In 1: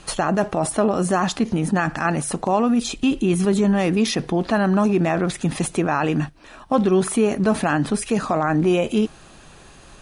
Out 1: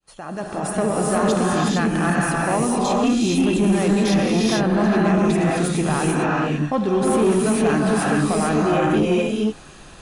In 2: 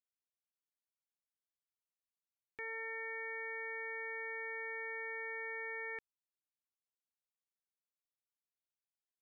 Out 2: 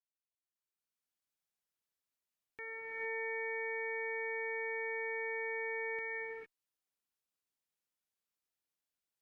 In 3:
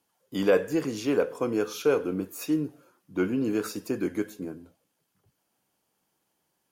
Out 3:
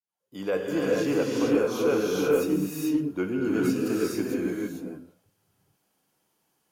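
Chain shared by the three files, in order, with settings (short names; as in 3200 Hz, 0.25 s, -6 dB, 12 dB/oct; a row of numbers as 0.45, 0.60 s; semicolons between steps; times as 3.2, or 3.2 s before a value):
opening faded in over 0.83 s; non-linear reverb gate 0.48 s rising, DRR -3.5 dB; added harmonics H 4 -30 dB, 5 -18 dB, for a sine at -1 dBFS; gain -6.5 dB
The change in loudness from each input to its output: +1.0, +3.0, +2.0 LU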